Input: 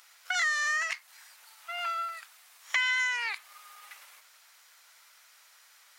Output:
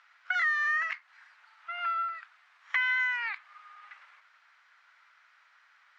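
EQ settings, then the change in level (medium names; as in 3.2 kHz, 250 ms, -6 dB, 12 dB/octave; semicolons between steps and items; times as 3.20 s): band-pass filter 1.5 kHz, Q 1.6; distance through air 110 m; +3.5 dB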